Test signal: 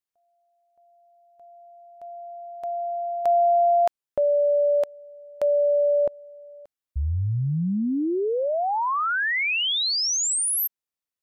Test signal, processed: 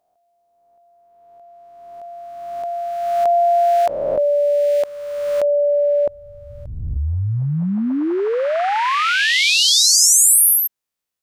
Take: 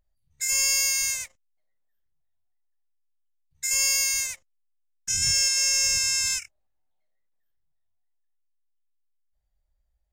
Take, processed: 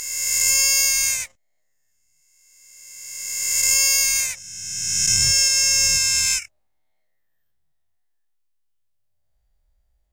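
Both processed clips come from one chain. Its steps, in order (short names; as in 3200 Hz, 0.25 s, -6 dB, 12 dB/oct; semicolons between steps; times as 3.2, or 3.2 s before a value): spectral swells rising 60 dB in 1.84 s; gain +4 dB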